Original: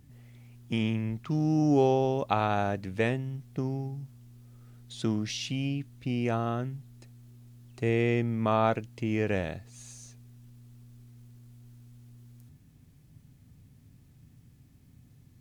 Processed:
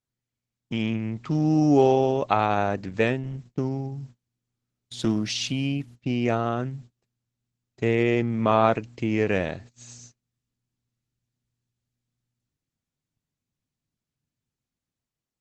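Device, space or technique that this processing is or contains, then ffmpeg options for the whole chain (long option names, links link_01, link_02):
video call: -af "highpass=frequency=130:poles=1,dynaudnorm=framelen=230:gausssize=7:maxgain=6.5dB,agate=range=-35dB:threshold=-42dB:ratio=16:detection=peak" -ar 48000 -c:a libopus -b:a 12k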